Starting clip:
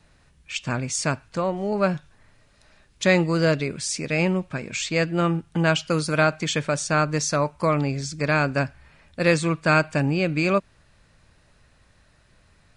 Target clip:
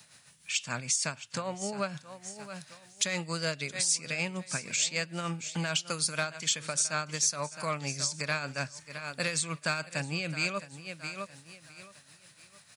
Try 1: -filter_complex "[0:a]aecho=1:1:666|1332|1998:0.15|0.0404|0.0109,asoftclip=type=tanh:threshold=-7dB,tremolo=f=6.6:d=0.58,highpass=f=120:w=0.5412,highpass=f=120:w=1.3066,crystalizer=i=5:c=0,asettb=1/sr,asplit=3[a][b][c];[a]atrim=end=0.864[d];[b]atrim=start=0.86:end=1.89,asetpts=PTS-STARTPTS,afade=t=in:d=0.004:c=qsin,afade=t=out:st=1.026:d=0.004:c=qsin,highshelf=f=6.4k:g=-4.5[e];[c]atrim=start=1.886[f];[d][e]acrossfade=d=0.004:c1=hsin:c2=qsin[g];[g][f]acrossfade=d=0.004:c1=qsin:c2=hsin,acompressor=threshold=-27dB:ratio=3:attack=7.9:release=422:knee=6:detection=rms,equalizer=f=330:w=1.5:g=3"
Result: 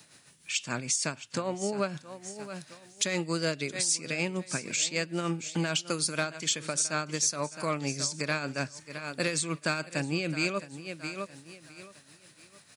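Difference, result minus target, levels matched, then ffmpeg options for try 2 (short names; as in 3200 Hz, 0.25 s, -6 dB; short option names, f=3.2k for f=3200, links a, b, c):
250 Hz band +4.5 dB
-filter_complex "[0:a]aecho=1:1:666|1332|1998:0.15|0.0404|0.0109,asoftclip=type=tanh:threshold=-7dB,tremolo=f=6.6:d=0.58,highpass=f=120:w=0.5412,highpass=f=120:w=1.3066,crystalizer=i=5:c=0,asettb=1/sr,asplit=3[a][b][c];[a]atrim=end=0.864[d];[b]atrim=start=0.86:end=1.89,asetpts=PTS-STARTPTS,afade=t=in:d=0.004:c=qsin,afade=t=out:st=1.026:d=0.004:c=qsin,highshelf=f=6.4k:g=-4.5[e];[c]atrim=start=1.886[f];[d][e]acrossfade=d=0.004:c1=hsin:c2=qsin[g];[g][f]acrossfade=d=0.004:c1=qsin:c2=hsin,acompressor=threshold=-27dB:ratio=3:attack=7.9:release=422:knee=6:detection=rms,equalizer=f=330:w=1.5:g=-8"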